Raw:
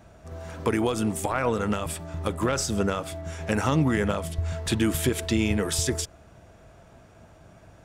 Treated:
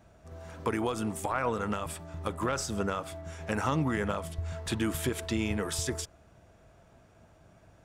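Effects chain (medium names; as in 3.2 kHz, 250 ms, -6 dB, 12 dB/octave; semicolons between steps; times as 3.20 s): dynamic bell 1.1 kHz, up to +5 dB, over -43 dBFS, Q 1.1; trim -7 dB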